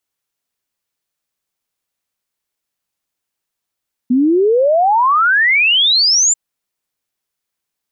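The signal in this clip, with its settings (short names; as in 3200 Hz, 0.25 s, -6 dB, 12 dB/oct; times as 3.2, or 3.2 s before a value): log sweep 240 Hz -> 7400 Hz 2.24 s -9 dBFS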